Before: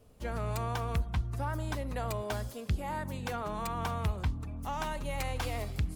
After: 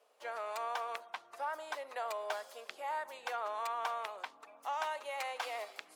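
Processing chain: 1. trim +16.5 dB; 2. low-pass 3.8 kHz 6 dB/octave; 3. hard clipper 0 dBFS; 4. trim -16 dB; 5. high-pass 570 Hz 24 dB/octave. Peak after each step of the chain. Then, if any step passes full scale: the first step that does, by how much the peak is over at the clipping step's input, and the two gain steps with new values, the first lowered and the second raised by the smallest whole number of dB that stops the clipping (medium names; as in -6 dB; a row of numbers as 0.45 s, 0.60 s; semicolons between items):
-6.0 dBFS, -6.0 dBFS, -6.0 dBFS, -22.0 dBFS, -21.5 dBFS; nothing clips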